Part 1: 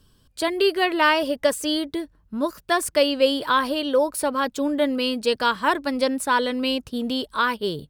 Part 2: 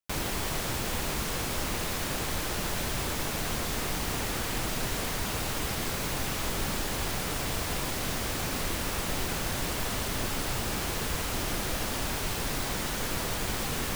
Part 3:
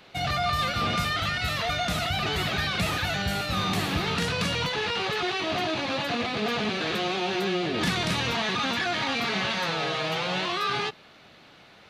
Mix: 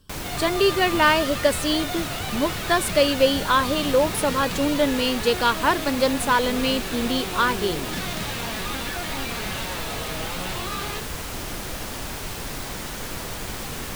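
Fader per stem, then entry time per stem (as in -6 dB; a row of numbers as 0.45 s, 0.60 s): +0.5 dB, -0.5 dB, -5.0 dB; 0.00 s, 0.00 s, 0.10 s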